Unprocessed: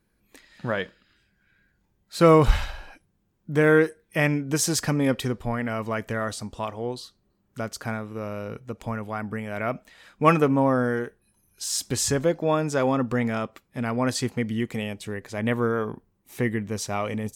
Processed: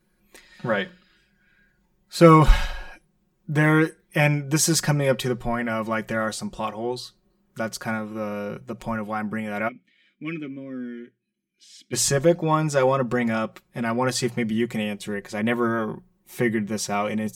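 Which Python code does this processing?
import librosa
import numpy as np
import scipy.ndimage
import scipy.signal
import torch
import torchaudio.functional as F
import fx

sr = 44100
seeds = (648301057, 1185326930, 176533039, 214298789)

y = fx.hum_notches(x, sr, base_hz=60, count=3)
y = fx.vowel_filter(y, sr, vowel='i', at=(9.67, 11.92), fade=0.02)
y = y + 0.85 * np.pad(y, (int(5.5 * sr / 1000.0), 0))[:len(y)]
y = F.gain(torch.from_numpy(y), 1.0).numpy()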